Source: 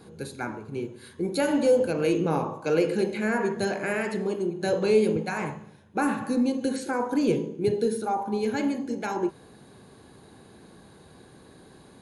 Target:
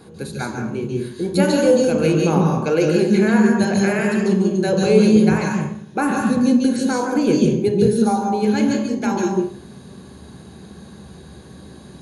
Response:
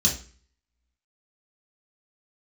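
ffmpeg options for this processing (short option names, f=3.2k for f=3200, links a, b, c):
-filter_complex "[0:a]asplit=2[a][b];[1:a]atrim=start_sample=2205,adelay=142[c];[b][c]afir=irnorm=-1:irlink=0,volume=-12.5dB[d];[a][d]amix=inputs=2:normalize=0,volume=5dB"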